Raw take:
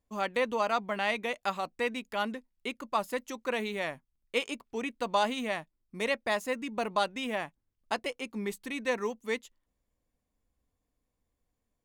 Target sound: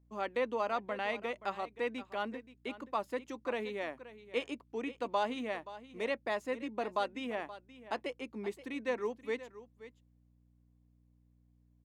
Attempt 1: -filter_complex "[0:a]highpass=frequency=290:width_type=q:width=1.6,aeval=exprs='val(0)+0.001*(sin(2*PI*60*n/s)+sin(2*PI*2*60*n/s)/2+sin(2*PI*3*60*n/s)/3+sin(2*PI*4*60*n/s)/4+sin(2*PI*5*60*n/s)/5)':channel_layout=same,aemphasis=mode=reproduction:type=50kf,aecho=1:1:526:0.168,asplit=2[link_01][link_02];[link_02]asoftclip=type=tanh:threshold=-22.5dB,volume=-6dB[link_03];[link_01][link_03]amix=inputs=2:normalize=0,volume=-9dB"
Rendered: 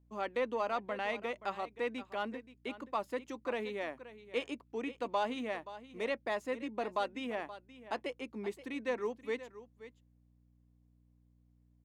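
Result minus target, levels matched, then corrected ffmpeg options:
soft clipping: distortion +16 dB
-filter_complex "[0:a]highpass=frequency=290:width_type=q:width=1.6,aeval=exprs='val(0)+0.001*(sin(2*PI*60*n/s)+sin(2*PI*2*60*n/s)/2+sin(2*PI*3*60*n/s)/3+sin(2*PI*4*60*n/s)/4+sin(2*PI*5*60*n/s)/5)':channel_layout=same,aemphasis=mode=reproduction:type=50kf,aecho=1:1:526:0.168,asplit=2[link_01][link_02];[link_02]asoftclip=type=tanh:threshold=-12dB,volume=-6dB[link_03];[link_01][link_03]amix=inputs=2:normalize=0,volume=-9dB"

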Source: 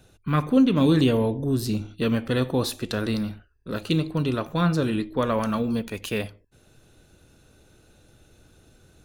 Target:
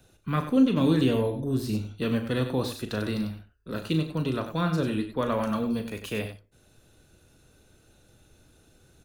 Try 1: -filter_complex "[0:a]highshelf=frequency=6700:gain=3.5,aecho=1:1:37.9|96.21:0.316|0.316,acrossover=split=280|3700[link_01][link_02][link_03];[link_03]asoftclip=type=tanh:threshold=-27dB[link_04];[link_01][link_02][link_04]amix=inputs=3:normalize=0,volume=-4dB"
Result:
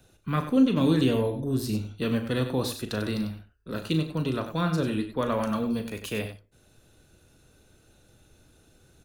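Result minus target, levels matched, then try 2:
soft clipping: distortion −9 dB
-filter_complex "[0:a]highshelf=frequency=6700:gain=3.5,aecho=1:1:37.9|96.21:0.316|0.316,acrossover=split=280|3700[link_01][link_02][link_03];[link_03]asoftclip=type=tanh:threshold=-37.5dB[link_04];[link_01][link_02][link_04]amix=inputs=3:normalize=0,volume=-4dB"

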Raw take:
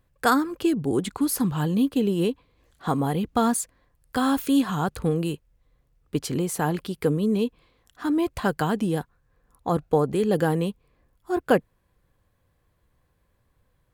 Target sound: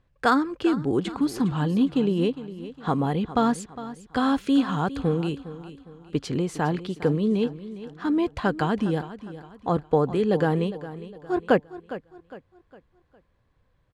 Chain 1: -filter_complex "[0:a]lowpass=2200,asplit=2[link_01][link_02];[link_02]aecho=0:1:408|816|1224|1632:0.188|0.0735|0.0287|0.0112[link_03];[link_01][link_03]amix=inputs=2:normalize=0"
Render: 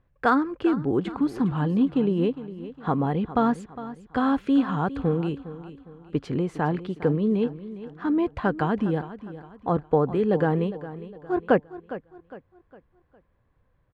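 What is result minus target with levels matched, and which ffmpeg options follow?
4,000 Hz band −7.0 dB
-filter_complex "[0:a]lowpass=4800,asplit=2[link_01][link_02];[link_02]aecho=0:1:408|816|1224|1632:0.188|0.0735|0.0287|0.0112[link_03];[link_01][link_03]amix=inputs=2:normalize=0"

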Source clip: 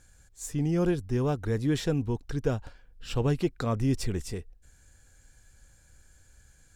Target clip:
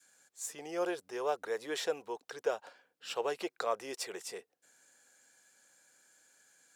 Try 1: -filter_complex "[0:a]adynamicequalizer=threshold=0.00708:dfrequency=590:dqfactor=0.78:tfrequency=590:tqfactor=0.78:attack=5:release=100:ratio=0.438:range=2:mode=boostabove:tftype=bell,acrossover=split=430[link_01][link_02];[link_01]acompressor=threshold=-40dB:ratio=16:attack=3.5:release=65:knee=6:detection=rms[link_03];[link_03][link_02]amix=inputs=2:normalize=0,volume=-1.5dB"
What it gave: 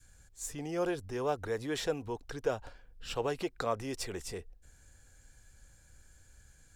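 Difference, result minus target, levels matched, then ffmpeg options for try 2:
250 Hz band +4.5 dB
-filter_complex "[0:a]adynamicequalizer=threshold=0.00708:dfrequency=590:dqfactor=0.78:tfrequency=590:tqfactor=0.78:attack=5:release=100:ratio=0.438:range=2:mode=boostabove:tftype=bell,acrossover=split=430[link_01][link_02];[link_01]acompressor=threshold=-40dB:ratio=16:attack=3.5:release=65:knee=6:detection=rms,highpass=frequency=270:width=0.5412,highpass=frequency=270:width=1.3066[link_03];[link_03][link_02]amix=inputs=2:normalize=0,volume=-1.5dB"

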